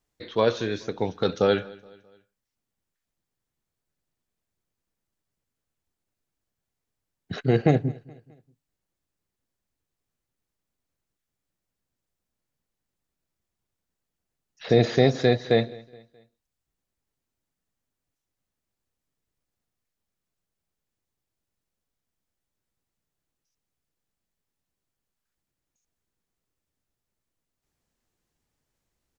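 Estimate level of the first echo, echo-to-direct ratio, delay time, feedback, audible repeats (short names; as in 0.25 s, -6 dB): -23.0 dB, -22.0 dB, 0.211 s, 46%, 2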